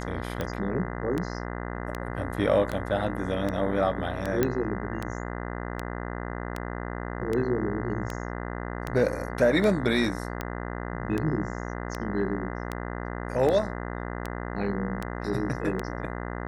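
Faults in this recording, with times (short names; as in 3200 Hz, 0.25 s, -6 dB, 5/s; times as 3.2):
buzz 60 Hz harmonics 34 -34 dBFS
tick 78 rpm -16 dBFS
4.43 pop -10 dBFS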